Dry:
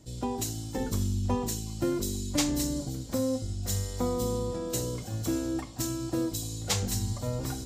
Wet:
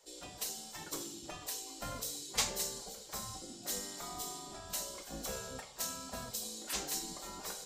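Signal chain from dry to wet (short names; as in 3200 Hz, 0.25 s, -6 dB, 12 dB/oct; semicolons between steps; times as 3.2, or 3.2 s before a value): spectral gate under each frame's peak -15 dB weak; flange 0.75 Hz, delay 1.8 ms, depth 7.6 ms, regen -72%; on a send: reverb RT60 0.60 s, pre-delay 4 ms, DRR 11 dB; on the sum: gain +2.5 dB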